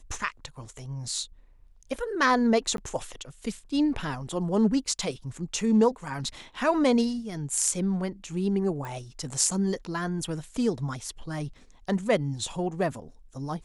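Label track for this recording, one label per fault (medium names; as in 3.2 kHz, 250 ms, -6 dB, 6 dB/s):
2.770000	2.780000	dropout 12 ms
8.850000	8.850000	pop -24 dBFS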